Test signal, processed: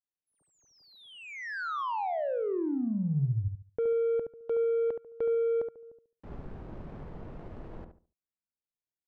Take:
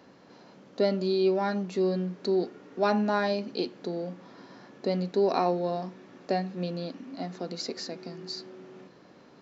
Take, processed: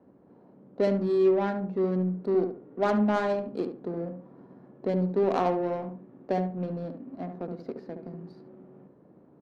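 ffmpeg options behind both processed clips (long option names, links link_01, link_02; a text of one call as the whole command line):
ffmpeg -i in.wav -filter_complex "[0:a]adynamicequalizer=threshold=0.00251:dfrequency=140:dqfactor=5.2:tfrequency=140:tqfactor=5.2:attack=5:release=100:ratio=0.375:range=2:mode=boostabove:tftype=bell,adynamicsmooth=sensitivity=1.5:basefreq=630,asplit=2[link_01][link_02];[link_02]adelay=71,lowpass=frequency=1400:poles=1,volume=-6dB,asplit=2[link_03][link_04];[link_04]adelay=71,lowpass=frequency=1400:poles=1,volume=0.28,asplit=2[link_05][link_06];[link_06]adelay=71,lowpass=frequency=1400:poles=1,volume=0.28,asplit=2[link_07][link_08];[link_08]adelay=71,lowpass=frequency=1400:poles=1,volume=0.28[link_09];[link_03][link_05][link_07][link_09]amix=inputs=4:normalize=0[link_10];[link_01][link_10]amix=inputs=2:normalize=0" out.wav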